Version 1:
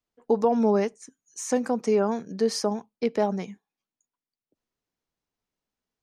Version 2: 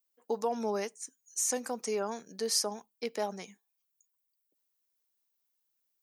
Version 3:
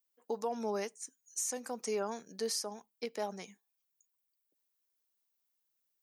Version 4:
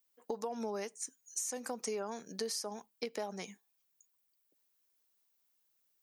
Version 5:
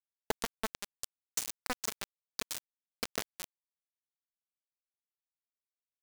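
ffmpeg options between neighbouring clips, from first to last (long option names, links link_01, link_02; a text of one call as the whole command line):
ffmpeg -i in.wav -af "aemphasis=mode=production:type=riaa,volume=-7dB" out.wav
ffmpeg -i in.wav -af "alimiter=limit=-23dB:level=0:latency=1:release=392,volume=-2dB" out.wav
ffmpeg -i in.wav -af "acompressor=threshold=-40dB:ratio=6,volume=5dB" out.wav
ffmpeg -i in.wav -af "acrusher=bits=4:mix=0:aa=0.000001,volume=4dB" out.wav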